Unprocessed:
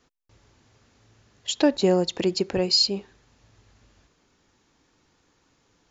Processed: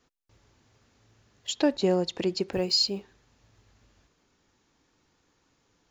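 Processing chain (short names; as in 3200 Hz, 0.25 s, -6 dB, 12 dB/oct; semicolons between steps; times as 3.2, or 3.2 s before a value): block floating point 7-bit; 1.53–2.52 LPF 6800 Hz 12 dB/oct; gain -4 dB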